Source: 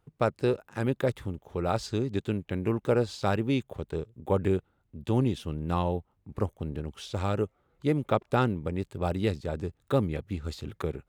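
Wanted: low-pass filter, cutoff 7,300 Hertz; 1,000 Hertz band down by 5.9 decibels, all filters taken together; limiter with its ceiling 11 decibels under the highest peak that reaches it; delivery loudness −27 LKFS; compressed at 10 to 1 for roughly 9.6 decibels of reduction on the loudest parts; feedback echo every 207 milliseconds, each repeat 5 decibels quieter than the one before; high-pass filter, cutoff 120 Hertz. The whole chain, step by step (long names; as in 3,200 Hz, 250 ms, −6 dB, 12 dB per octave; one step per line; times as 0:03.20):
high-pass filter 120 Hz
low-pass filter 7,300 Hz
parametric band 1,000 Hz −8.5 dB
downward compressor 10 to 1, threshold −31 dBFS
brickwall limiter −29 dBFS
repeating echo 207 ms, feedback 56%, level −5 dB
level +13.5 dB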